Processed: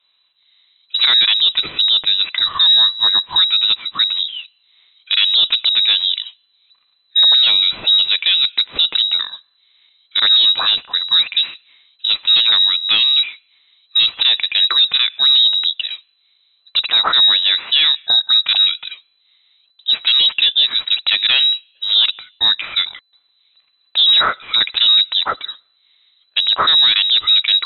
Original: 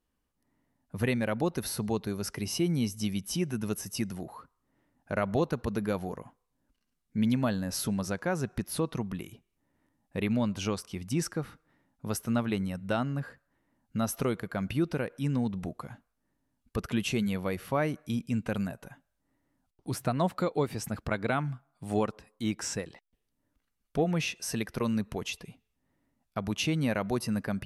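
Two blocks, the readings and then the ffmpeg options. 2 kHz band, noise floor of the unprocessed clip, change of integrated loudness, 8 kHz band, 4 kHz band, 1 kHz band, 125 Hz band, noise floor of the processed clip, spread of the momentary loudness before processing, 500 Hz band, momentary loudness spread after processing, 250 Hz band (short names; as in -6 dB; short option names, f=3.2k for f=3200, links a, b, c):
+15.5 dB, -80 dBFS, +19.5 dB, under -40 dB, +34.0 dB, +10.5 dB, under -15 dB, -61 dBFS, 10 LU, n/a, 10 LU, under -15 dB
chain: -af "lowpass=f=3.4k:t=q:w=0.5098,lowpass=f=3.4k:t=q:w=0.6013,lowpass=f=3.4k:t=q:w=0.9,lowpass=f=3.4k:t=q:w=2.563,afreqshift=-4000,apsyclip=25dB,volume=-6.5dB"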